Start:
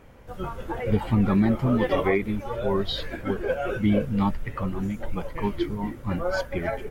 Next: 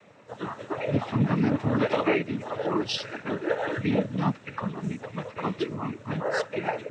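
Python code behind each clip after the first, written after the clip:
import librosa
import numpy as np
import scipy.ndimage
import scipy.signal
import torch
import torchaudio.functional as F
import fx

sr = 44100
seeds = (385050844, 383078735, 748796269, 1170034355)

y = fx.low_shelf(x, sr, hz=430.0, db=-4.5)
y = fx.noise_vocoder(y, sr, seeds[0], bands=12)
y = y * 10.0 ** (1.0 / 20.0)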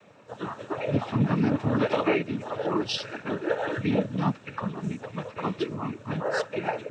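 y = fx.notch(x, sr, hz=2000.0, q=11.0)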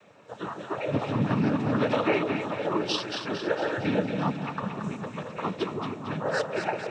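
y = fx.low_shelf(x, sr, hz=270.0, db=-4.0)
y = fx.echo_split(y, sr, split_hz=680.0, low_ms=151, high_ms=227, feedback_pct=52, wet_db=-6)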